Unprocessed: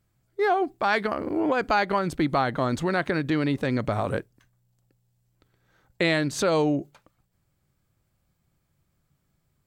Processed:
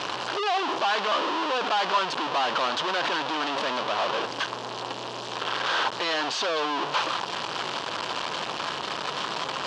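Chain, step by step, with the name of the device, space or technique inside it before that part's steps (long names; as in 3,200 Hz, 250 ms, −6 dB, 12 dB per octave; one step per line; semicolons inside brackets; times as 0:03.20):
home computer beeper (sign of each sample alone; loudspeaker in its box 550–4,800 Hz, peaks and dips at 1,000 Hz +7 dB, 2,100 Hz −7 dB, 3,000 Hz +5 dB)
level +4.5 dB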